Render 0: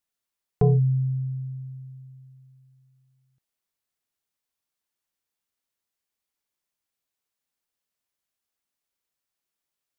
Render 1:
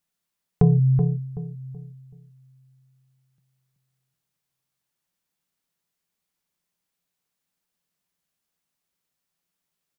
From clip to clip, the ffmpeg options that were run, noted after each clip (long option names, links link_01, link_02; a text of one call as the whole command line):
ffmpeg -i in.wav -filter_complex "[0:a]equalizer=frequency=170:width=3.7:gain=12.5,acompressor=threshold=-19dB:ratio=3,asplit=2[link_01][link_02];[link_02]adelay=378,lowpass=frequency=810:poles=1,volume=-6dB,asplit=2[link_03][link_04];[link_04]adelay=378,lowpass=frequency=810:poles=1,volume=0.34,asplit=2[link_05][link_06];[link_06]adelay=378,lowpass=frequency=810:poles=1,volume=0.34,asplit=2[link_07][link_08];[link_08]adelay=378,lowpass=frequency=810:poles=1,volume=0.34[link_09];[link_01][link_03][link_05][link_07][link_09]amix=inputs=5:normalize=0,volume=3.5dB" out.wav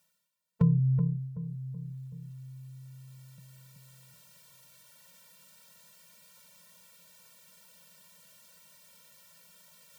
ffmpeg -i in.wav -af "highpass=frequency=270:poles=1,areverse,acompressor=mode=upward:threshold=-32dB:ratio=2.5,areverse,afftfilt=real='re*eq(mod(floor(b*sr/1024/220),2),0)':imag='im*eq(mod(floor(b*sr/1024/220),2),0)':win_size=1024:overlap=0.75" out.wav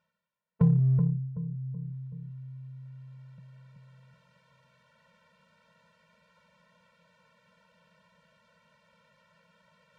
ffmpeg -i in.wav -filter_complex "[0:a]lowpass=1900,asplit=2[link_01][link_02];[link_02]asoftclip=type=hard:threshold=-24dB,volume=-9dB[link_03];[link_01][link_03]amix=inputs=2:normalize=0" out.wav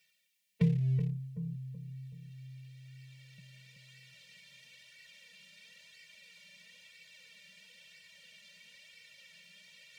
ffmpeg -i in.wav -filter_complex "[0:a]equalizer=frequency=125:width_type=o:width=1:gain=6,equalizer=frequency=500:width_type=o:width=1:gain=5,equalizer=frequency=1000:width_type=o:width=1:gain=-9,equalizer=frequency=2000:width_type=o:width=1:gain=8,flanger=delay=2.6:depth=2.5:regen=25:speed=1:shape=sinusoidal,acrossover=split=160[link_01][link_02];[link_02]aexciter=amount=13.9:drive=2.6:freq=2100[link_03];[link_01][link_03]amix=inputs=2:normalize=0,volume=-4.5dB" out.wav